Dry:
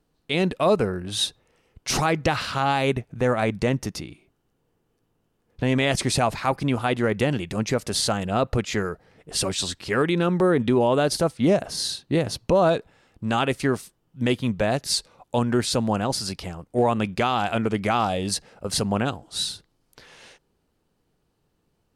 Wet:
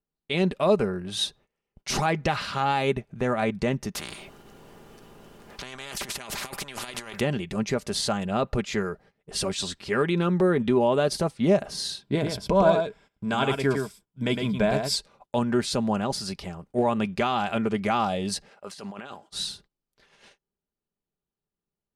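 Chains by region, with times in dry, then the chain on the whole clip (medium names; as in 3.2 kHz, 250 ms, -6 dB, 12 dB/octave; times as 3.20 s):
3.95–7.20 s: compressor with a negative ratio -29 dBFS, ratio -0.5 + spectrum-flattening compressor 4:1
12.01–14.96 s: rippled EQ curve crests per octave 1.7, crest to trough 8 dB + delay 109 ms -5.5 dB
18.51–19.29 s: high-pass 1 kHz 6 dB/octave + treble shelf 6.8 kHz -6 dB + compressor with a negative ratio -37 dBFS
whole clip: treble shelf 8.1 kHz -6 dB; gate -48 dBFS, range -18 dB; comb 5 ms, depth 40%; trim -3 dB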